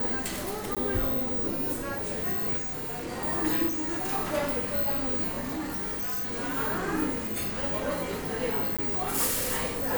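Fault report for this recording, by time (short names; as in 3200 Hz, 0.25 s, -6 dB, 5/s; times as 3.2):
0.75–0.77 gap 16 ms
2.57–3.1 clipped -30.5 dBFS
3.68–4.12 clipped -27.5 dBFS
5.47–6.58 clipped -28.5 dBFS
8.77–8.79 gap 16 ms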